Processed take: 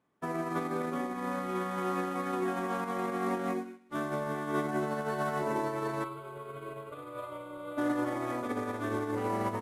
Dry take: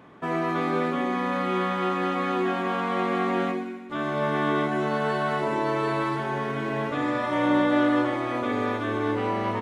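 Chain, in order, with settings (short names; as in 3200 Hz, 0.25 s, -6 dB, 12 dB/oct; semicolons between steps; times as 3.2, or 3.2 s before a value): CVSD 64 kbps; dynamic EQ 2900 Hz, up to -7 dB, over -49 dBFS, Q 1.3; limiter -21.5 dBFS, peak gain reduction 9 dB; 6.04–7.78 fixed phaser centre 1200 Hz, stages 8; upward expander 2.5:1, over -45 dBFS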